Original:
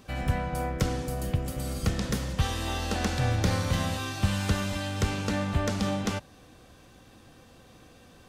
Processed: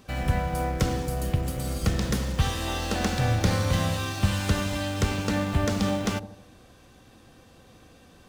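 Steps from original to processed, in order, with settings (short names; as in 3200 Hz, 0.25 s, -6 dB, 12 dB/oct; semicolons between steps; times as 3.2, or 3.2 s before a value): in parallel at -11 dB: bit-crush 6-bit; on the sum: dark delay 78 ms, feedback 46%, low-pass 630 Hz, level -10 dB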